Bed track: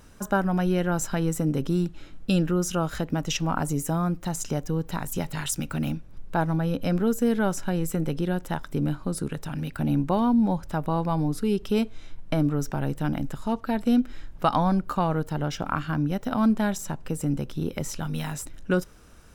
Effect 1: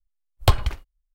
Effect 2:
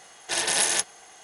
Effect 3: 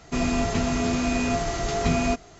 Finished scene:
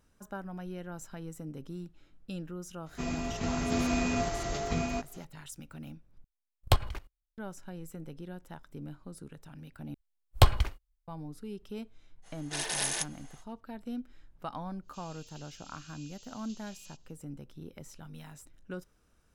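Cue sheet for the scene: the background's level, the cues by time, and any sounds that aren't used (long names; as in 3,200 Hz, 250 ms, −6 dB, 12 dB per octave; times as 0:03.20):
bed track −17 dB
0:02.86: mix in 3 −4.5 dB + sample-and-hold tremolo
0:06.24: overwrite with 1 −1.5 dB + output level in coarse steps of 17 dB
0:09.94: overwrite with 1 −3 dB
0:12.22: mix in 2 −9 dB, fades 0.05 s
0:14.81: mix in 3 −17.5 dB, fades 0.10 s + Chebyshev high-pass filter 2,800 Hz, order 5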